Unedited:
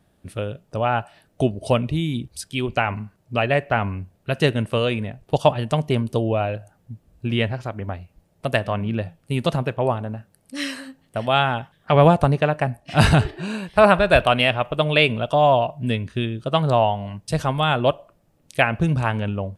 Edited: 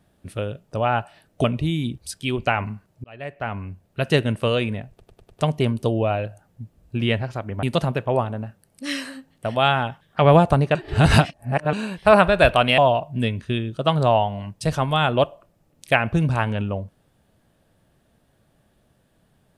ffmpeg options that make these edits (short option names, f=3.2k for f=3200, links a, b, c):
-filter_complex "[0:a]asplit=12[a][b][c][d][e][f][g][h][i][j][k][l];[a]atrim=end=1.442[m];[b]atrim=start=1.738:end=3.34,asetpts=PTS-STARTPTS,afade=t=out:st=1.598:d=0.004:c=hsin[n];[c]atrim=start=3.34:end=5.302,asetpts=PTS-STARTPTS,afade=t=in:d=0.99[o];[d]atrim=start=5.198:end=5.302[p];[e]atrim=start=5.198:end=5.302[q];[f]atrim=start=5.198:end=5.302[r];[g]atrim=start=5.198:end=5.302[s];[h]atrim=start=5.698:end=7.932[t];[i]atrim=start=9.338:end=12.462[u];[j]atrim=start=12.458:end=13.442,asetpts=PTS-STARTPTS,areverse[v];[k]atrim=start=13.438:end=14.492[w];[l]atrim=start=15.448[x];[n][o]concat=n=2:v=0:a=1[y];[m][y]acrossfade=d=0.004:c1=hsin:c2=hsin[z];[z][p]acrossfade=d=0.004:c1=hsin:c2=hsin[aa];[aa][q]acrossfade=d=0.004:c1=hsin:c2=hsin[ab];[ab][r]acrossfade=d=0.004:c1=hsin:c2=hsin[ac];[ac][s]acrossfade=d=0.004:c1=hsin:c2=hsin[ad];[ad][t]acrossfade=d=0.004:c1=hsin:c2=hsin[ae];[ae][u]acrossfade=d=0.004:c1=hsin:c2=hsin[af];[af][v]acrossfade=d=0.004:c1=hsin:c2=hsin[ag];[ag][w]acrossfade=d=0.004:c1=hsin:c2=hsin[ah];[ah][x]acrossfade=d=0.004:c1=hsin:c2=hsin"